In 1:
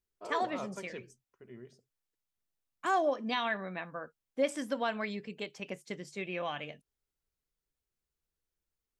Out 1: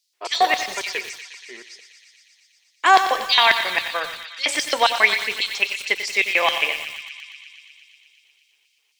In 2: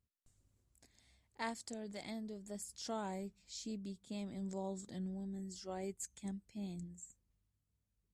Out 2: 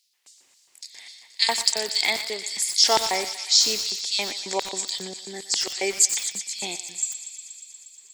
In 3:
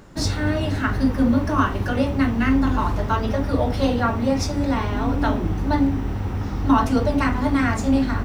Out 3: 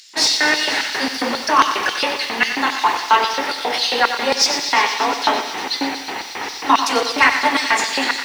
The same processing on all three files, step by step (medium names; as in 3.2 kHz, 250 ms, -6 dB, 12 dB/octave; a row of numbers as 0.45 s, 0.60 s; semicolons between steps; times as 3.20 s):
LFO high-pass square 3.7 Hz 830–4700 Hz; in parallel at -2 dB: gain riding within 3 dB 2 s; on the sum: high-order bell 920 Hz -13.5 dB; overdrive pedal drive 15 dB, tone 2.1 kHz, clips at -3 dBFS; on a send: thinning echo 119 ms, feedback 83%, high-pass 1 kHz, level -11 dB; on the sum: bit-crushed delay 92 ms, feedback 55%, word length 7-bit, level -10 dB; peak normalisation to -1.5 dBFS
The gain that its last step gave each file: +12.0 dB, +19.0 dB, +5.5 dB